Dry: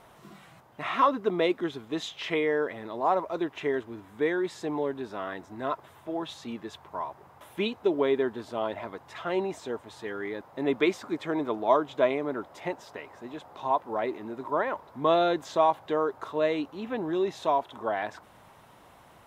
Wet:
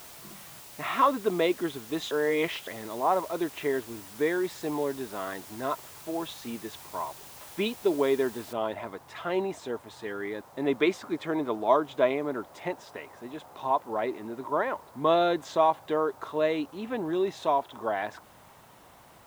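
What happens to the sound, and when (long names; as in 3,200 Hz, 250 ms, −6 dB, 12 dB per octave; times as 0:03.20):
0:02.11–0:02.67: reverse
0:08.53: noise floor change −48 dB −63 dB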